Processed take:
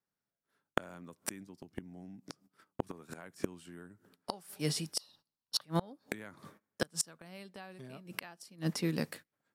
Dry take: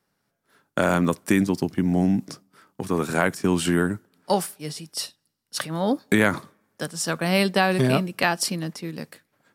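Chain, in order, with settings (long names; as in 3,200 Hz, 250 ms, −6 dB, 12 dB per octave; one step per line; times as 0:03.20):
noise gate −50 dBFS, range −19 dB
0:04.99–0:05.64: octave-band graphic EQ 1,000/2,000/4,000/8,000 Hz +10/−8/+8/−10 dB
gate with flip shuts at −17 dBFS, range −29 dB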